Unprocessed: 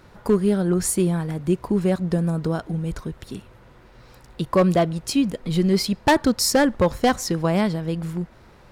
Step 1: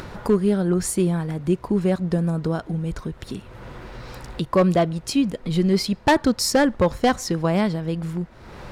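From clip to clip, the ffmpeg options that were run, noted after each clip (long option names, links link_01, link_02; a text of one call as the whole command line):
ffmpeg -i in.wav -af "highshelf=frequency=9900:gain=-7,acompressor=mode=upward:threshold=-25dB:ratio=2.5" out.wav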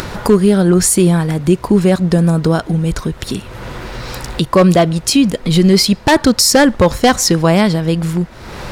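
ffmpeg -i in.wav -af "highshelf=frequency=2900:gain=7.5,alimiter=level_in=11.5dB:limit=-1dB:release=50:level=0:latency=1,volume=-1dB" out.wav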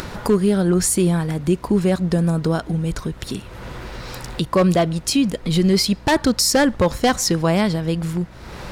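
ffmpeg -i in.wav -af "aeval=exprs='val(0)+0.0178*(sin(2*PI*60*n/s)+sin(2*PI*2*60*n/s)/2+sin(2*PI*3*60*n/s)/3+sin(2*PI*4*60*n/s)/4+sin(2*PI*5*60*n/s)/5)':channel_layout=same,volume=-6.5dB" out.wav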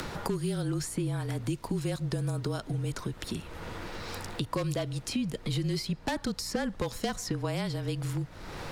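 ffmpeg -i in.wav -filter_complex "[0:a]acrossover=split=150|2900[link_01][link_02][link_03];[link_01]acompressor=threshold=-37dB:ratio=4[link_04];[link_02]acompressor=threshold=-26dB:ratio=4[link_05];[link_03]acompressor=threshold=-35dB:ratio=4[link_06];[link_04][link_05][link_06]amix=inputs=3:normalize=0,afreqshift=-29,volume=-5dB" out.wav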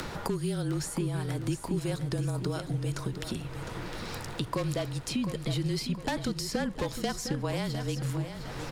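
ffmpeg -i in.wav -af "aecho=1:1:708|1416|2124|2832|3540:0.335|0.147|0.0648|0.0285|0.0126" out.wav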